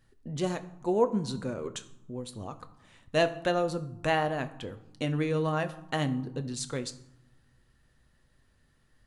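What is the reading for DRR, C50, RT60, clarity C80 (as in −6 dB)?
9.0 dB, 15.0 dB, 0.95 s, 17.5 dB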